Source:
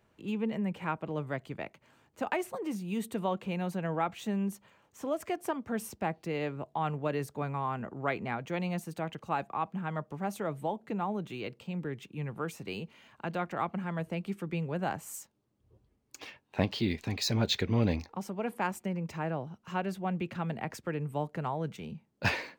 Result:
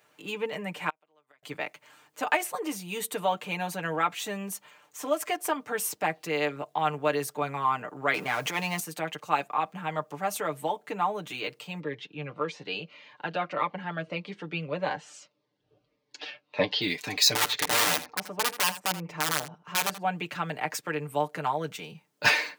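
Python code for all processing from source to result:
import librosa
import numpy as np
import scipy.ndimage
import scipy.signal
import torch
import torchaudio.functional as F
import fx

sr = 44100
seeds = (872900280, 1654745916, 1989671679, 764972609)

y = fx.chain(x, sr, fx.gate_flip(shuts_db=-29.0, range_db=-31),
    fx.highpass(hz=760.0, slope=6),
    fx.dynamic_eq(hz=1400.0, q=0.93, threshold_db=-56.0, ratio=4.0, max_db=-6), at=(0.89, 1.43))
y = fx.chain(y, sr, fx.law_mismatch(coded='mu'),
    fx.transient(attack_db=-10, sustain_db=5),
    fx.band_squash(depth_pct=40), at=(8.14, 8.8))
y = fx.chain(y, sr, fx.lowpass(hz=4600.0, slope=24),
    fx.peak_eq(hz=550.0, db=8.0, octaves=0.26),
    fx.notch_cascade(direction='falling', hz=1.7), at=(11.8, 16.82))
y = fx.chain(y, sr, fx.lowpass(hz=1200.0, slope=6),
    fx.overflow_wrap(gain_db=26.5),
    fx.echo_single(ms=81, db=-14.5), at=(17.35, 20.03))
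y = fx.highpass(y, sr, hz=910.0, slope=6)
y = fx.high_shelf(y, sr, hz=6000.0, db=4.5)
y = y + 0.72 * np.pad(y, (int(6.7 * sr / 1000.0), 0))[:len(y)]
y = y * librosa.db_to_amplitude(8.0)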